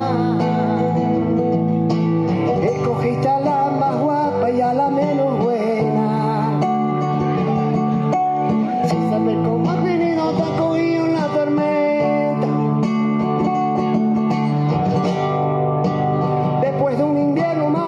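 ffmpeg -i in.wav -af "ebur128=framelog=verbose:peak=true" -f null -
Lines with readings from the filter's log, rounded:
Integrated loudness:
  I:         -18.3 LUFS
  Threshold: -28.3 LUFS
Loudness range:
  LRA:         0.5 LU
  Threshold: -38.3 LUFS
  LRA low:   -18.6 LUFS
  LRA high:  -18.1 LUFS
True peak:
  Peak:       -7.5 dBFS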